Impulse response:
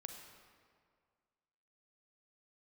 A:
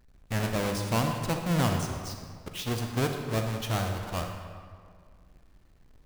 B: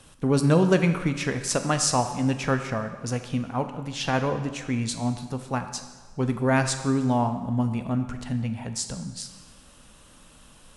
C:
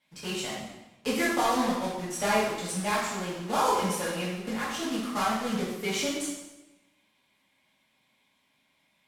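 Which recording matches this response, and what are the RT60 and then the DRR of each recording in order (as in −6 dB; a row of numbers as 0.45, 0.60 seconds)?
A; 2.0, 1.4, 1.0 seconds; 3.5, 7.5, −9.0 decibels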